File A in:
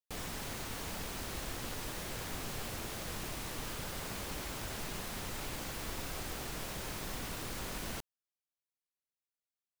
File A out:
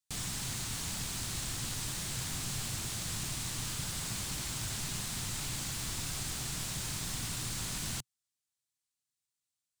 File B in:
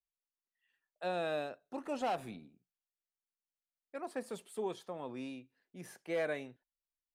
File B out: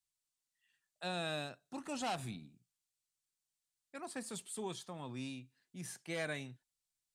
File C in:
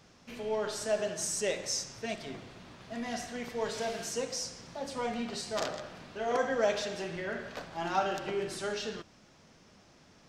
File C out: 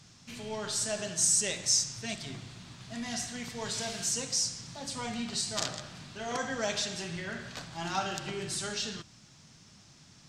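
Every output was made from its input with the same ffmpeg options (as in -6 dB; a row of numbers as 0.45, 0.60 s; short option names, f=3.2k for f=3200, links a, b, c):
-af "equalizer=f=125:t=o:w=1:g=10,equalizer=f=500:t=o:w=1:g=-8,equalizer=f=4k:t=o:w=1:g=5,equalizer=f=8k:t=o:w=1:g=11,volume=-1dB"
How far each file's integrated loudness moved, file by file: +4.5, -3.0, +2.5 LU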